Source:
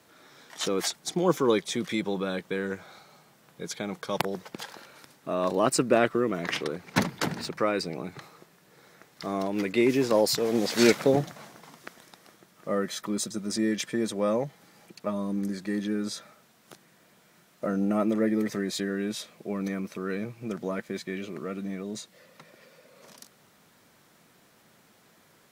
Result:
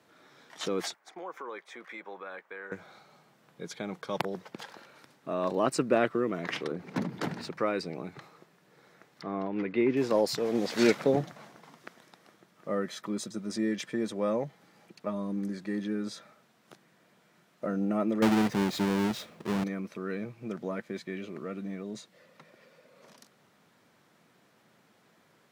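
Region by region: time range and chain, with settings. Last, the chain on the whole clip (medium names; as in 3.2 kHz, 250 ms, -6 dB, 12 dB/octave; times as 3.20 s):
0.94–2.72 s: high-pass 790 Hz + high-order bell 6.2 kHz -14 dB 2.5 oct + compression 4:1, threshold -33 dBFS
6.71–7.24 s: peaking EQ 250 Hz +10 dB 2.6 oct + compression 2.5:1, threshold -28 dBFS
9.22–9.97 s: low-pass 2.5 kHz + peaking EQ 610 Hz -4.5 dB 0.28 oct
18.22–19.64 s: square wave that keeps the level + bass shelf 140 Hz +5.5 dB
whole clip: high-pass 95 Hz; treble shelf 5.7 kHz -10 dB; trim -3 dB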